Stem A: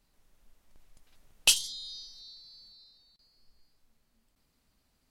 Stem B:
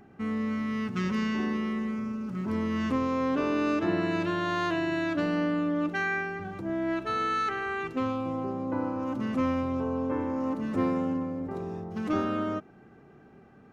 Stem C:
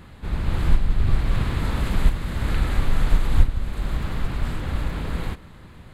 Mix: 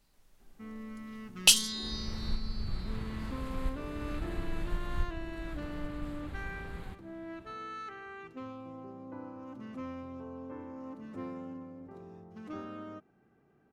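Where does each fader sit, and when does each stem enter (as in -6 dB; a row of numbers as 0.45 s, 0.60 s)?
+2.0 dB, -14.0 dB, -16.5 dB; 0.00 s, 0.40 s, 1.60 s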